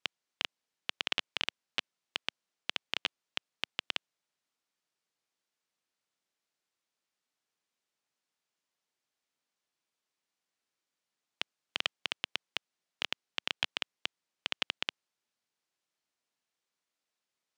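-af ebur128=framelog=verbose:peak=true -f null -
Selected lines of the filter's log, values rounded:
Integrated loudness:
  I:         -37.3 LUFS
  Threshold: -47.3 LUFS
Loudness range:
  LRA:         7.8 LU
  Threshold: -59.3 LUFS
  LRA low:   -44.9 LUFS
  LRA high:  -37.1 LUFS
True peak:
  Peak:      -11.2 dBFS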